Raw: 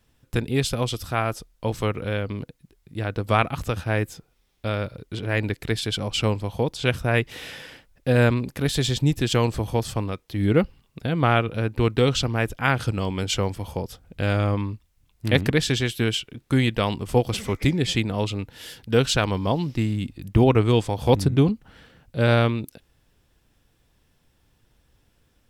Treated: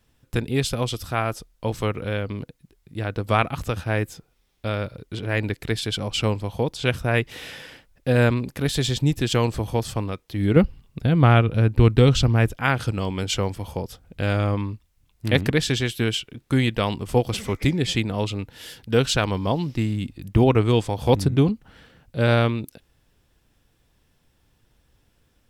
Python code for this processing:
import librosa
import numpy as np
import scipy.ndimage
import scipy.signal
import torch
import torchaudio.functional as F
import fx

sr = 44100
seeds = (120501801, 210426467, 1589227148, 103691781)

y = fx.low_shelf(x, sr, hz=190.0, db=11.0, at=(10.56, 12.49))